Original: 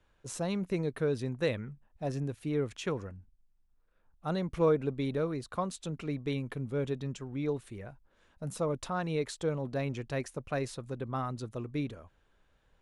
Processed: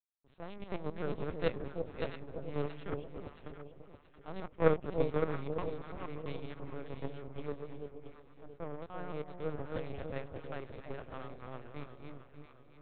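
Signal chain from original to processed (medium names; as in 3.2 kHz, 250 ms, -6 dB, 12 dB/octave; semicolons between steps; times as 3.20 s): backward echo that repeats 291 ms, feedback 54%, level -2 dB; power-law waveshaper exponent 2; LPC vocoder at 8 kHz pitch kept; 7.52–9.65 s: treble shelf 3 kHz -11.5 dB; echo whose repeats swap between lows and highs 338 ms, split 800 Hz, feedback 61%, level -5.5 dB; trim +2 dB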